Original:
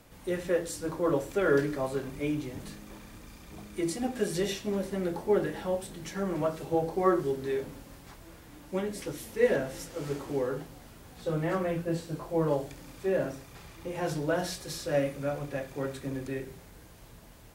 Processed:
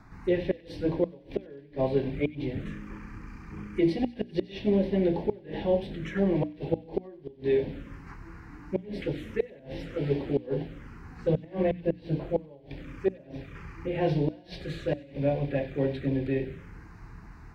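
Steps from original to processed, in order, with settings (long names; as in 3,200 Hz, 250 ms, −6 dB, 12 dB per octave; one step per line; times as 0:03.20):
phaser swept by the level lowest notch 500 Hz, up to 1,300 Hz, full sweep at −31 dBFS
gate with flip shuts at −22 dBFS, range −28 dB
high-frequency loss of the air 220 metres
mains-hum notches 60/120/180/240/300 Hz
on a send: delay with a high-pass on its return 94 ms, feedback 46%, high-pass 2,100 Hz, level −15 dB
on the sum: level +8.5 dB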